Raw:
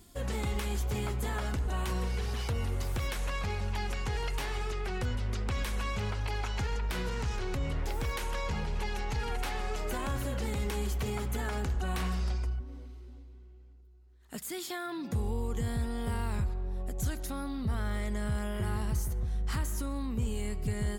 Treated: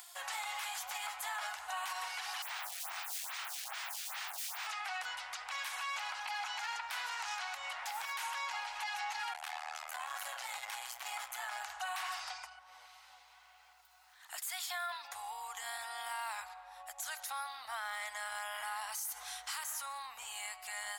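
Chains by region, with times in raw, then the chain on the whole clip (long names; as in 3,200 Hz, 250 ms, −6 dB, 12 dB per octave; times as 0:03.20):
0:02.42–0:04.67: wrap-around overflow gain 37 dB + phaser with staggered stages 2.4 Hz
0:09.33–0:11.62: double-tracking delay 27 ms −11 dB + saturating transformer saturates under 200 Hz
0:18.92–0:19.64: high-shelf EQ 2,300 Hz +11 dB + notch filter 1,800 Hz, Q 18 + envelope flattener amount 70%
whole clip: elliptic high-pass filter 750 Hz, stop band 50 dB; brickwall limiter −35 dBFS; upward compression, threshold −53 dBFS; level +4.5 dB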